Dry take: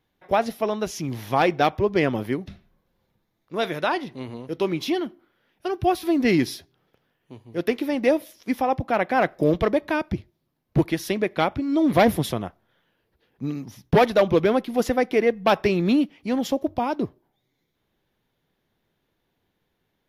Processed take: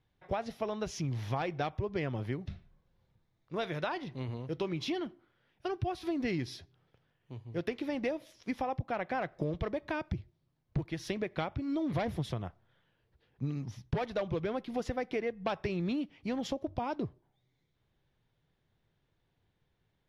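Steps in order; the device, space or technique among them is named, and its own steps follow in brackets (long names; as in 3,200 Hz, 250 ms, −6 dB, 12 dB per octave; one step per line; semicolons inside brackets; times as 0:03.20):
jukebox (low-pass filter 6,700 Hz 12 dB per octave; low shelf with overshoot 170 Hz +6.5 dB, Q 1.5; downward compressor 6 to 1, threshold −25 dBFS, peak gain reduction 14 dB)
level −5.5 dB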